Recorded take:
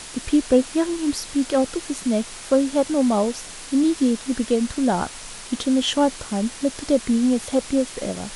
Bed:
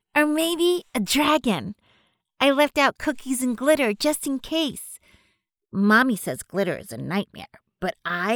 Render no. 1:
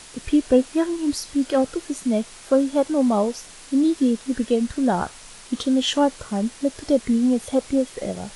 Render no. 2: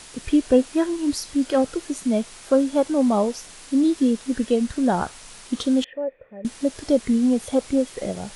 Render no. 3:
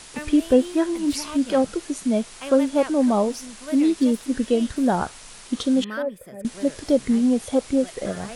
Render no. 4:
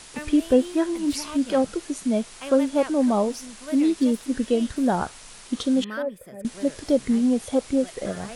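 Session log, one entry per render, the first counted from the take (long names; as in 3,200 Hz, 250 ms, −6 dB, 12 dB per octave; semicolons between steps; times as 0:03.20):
noise reduction from a noise print 6 dB
0:05.84–0:06.45: formant resonators in series e
mix in bed −16.5 dB
level −1.5 dB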